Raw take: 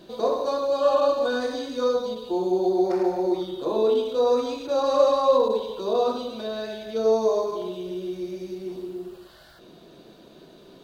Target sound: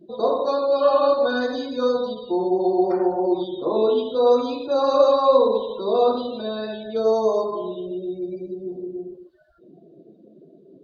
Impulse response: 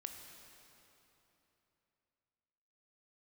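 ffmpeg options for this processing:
-filter_complex "[1:a]atrim=start_sample=2205,atrim=end_sample=3969[link_01];[0:a][link_01]afir=irnorm=-1:irlink=0,afftdn=noise_reduction=32:noise_floor=-46,volume=7.5dB"

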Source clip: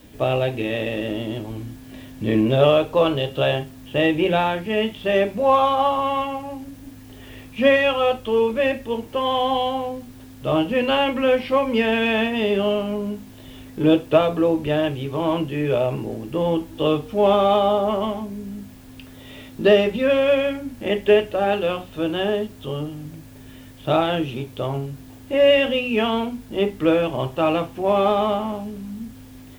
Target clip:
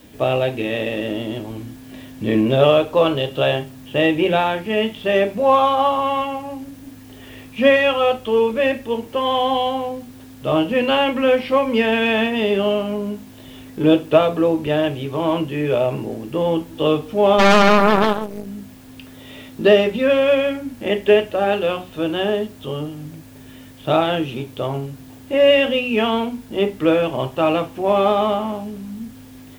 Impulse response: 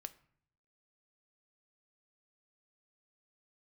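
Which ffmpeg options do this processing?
-filter_complex "[0:a]asplit=3[link_01][link_02][link_03];[link_01]afade=type=out:start_time=17.38:duration=0.02[link_04];[link_02]aeval=exprs='0.447*(cos(1*acos(clip(val(0)/0.447,-1,1)))-cos(1*PI/2))+0.178*(cos(4*acos(clip(val(0)/0.447,-1,1)))-cos(4*PI/2))+0.0282*(cos(7*acos(clip(val(0)/0.447,-1,1)))-cos(7*PI/2))+0.0794*(cos(8*acos(clip(val(0)/0.447,-1,1)))-cos(8*PI/2))':channel_layout=same,afade=type=in:start_time=17.38:duration=0.02,afade=type=out:start_time=18.45:duration=0.02[link_05];[link_03]afade=type=in:start_time=18.45:duration=0.02[link_06];[link_04][link_05][link_06]amix=inputs=3:normalize=0,lowshelf=frequency=66:gain=-9.5,asplit=2[link_07][link_08];[1:a]atrim=start_sample=2205[link_09];[link_08][link_09]afir=irnorm=-1:irlink=0,volume=1dB[link_10];[link_07][link_10]amix=inputs=2:normalize=0,volume=-2dB"

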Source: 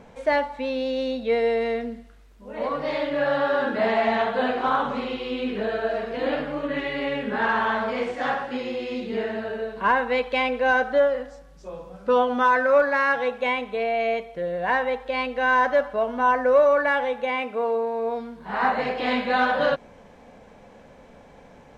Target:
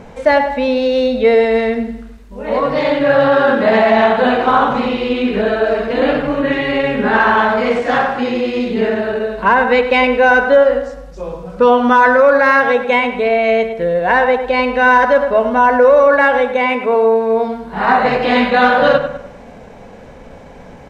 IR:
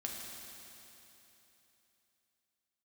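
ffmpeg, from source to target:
-filter_complex "[0:a]asplit=2[link_01][link_02];[link_02]adelay=105,lowpass=frequency=2900:poles=1,volume=-9.5dB,asplit=2[link_03][link_04];[link_04]adelay=105,lowpass=frequency=2900:poles=1,volume=0.44,asplit=2[link_05][link_06];[link_06]adelay=105,lowpass=frequency=2900:poles=1,volume=0.44,asplit=2[link_07][link_08];[link_08]adelay=105,lowpass=frequency=2900:poles=1,volume=0.44,asplit=2[link_09][link_10];[link_10]adelay=105,lowpass=frequency=2900:poles=1,volume=0.44[link_11];[link_03][link_05][link_07][link_09][link_11]amix=inputs=5:normalize=0[link_12];[link_01][link_12]amix=inputs=2:normalize=0,asetrate=41625,aresample=44100,atempo=1.05946,lowshelf=frequency=150:gain=5.5,bandreject=frequency=50:width_type=h:width=6,bandreject=frequency=100:width_type=h:width=6,bandreject=frequency=150:width_type=h:width=6,bandreject=frequency=200:width_type=h:width=6,asetrate=45938,aresample=44100,bandreject=frequency=3300:width=29,alimiter=level_in=11.5dB:limit=-1dB:release=50:level=0:latency=1,volume=-1dB"

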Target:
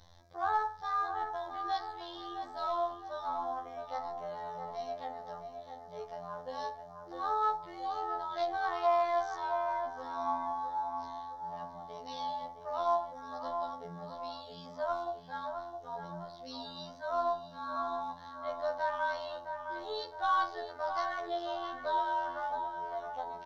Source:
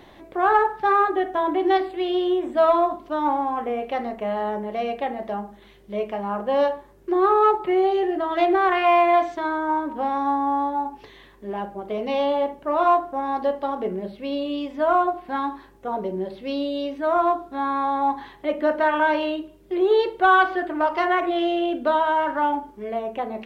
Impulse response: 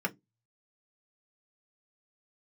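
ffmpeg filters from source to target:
-filter_complex "[0:a]flanger=delay=1.9:depth=2.8:regen=76:speed=0.32:shape=triangular,afftfilt=real='hypot(re,im)*cos(PI*b)':imag='0':win_size=2048:overlap=0.75,firequalizer=gain_entry='entry(120,0);entry(210,-16);entry(370,-26);entry(540,-11);entry(860,-9);entry(1600,-11);entry(2600,-22);entry(3800,-2);entry(5600,6);entry(8000,-12)':delay=0.05:min_phase=1,asplit=2[link_01][link_02];[link_02]adelay=664,lowpass=frequency=1900:poles=1,volume=-6dB,asplit=2[link_03][link_04];[link_04]adelay=664,lowpass=frequency=1900:poles=1,volume=0.53,asplit=2[link_05][link_06];[link_06]adelay=664,lowpass=frequency=1900:poles=1,volume=0.53,asplit=2[link_07][link_08];[link_08]adelay=664,lowpass=frequency=1900:poles=1,volume=0.53,asplit=2[link_09][link_10];[link_10]adelay=664,lowpass=frequency=1900:poles=1,volume=0.53,asplit=2[link_11][link_12];[link_12]adelay=664,lowpass=frequency=1900:poles=1,volume=0.53,asplit=2[link_13][link_14];[link_14]adelay=664,lowpass=frequency=1900:poles=1,volume=0.53[link_15];[link_03][link_05][link_07][link_09][link_11][link_13][link_15]amix=inputs=7:normalize=0[link_16];[link_01][link_16]amix=inputs=2:normalize=0,volume=4.5dB"

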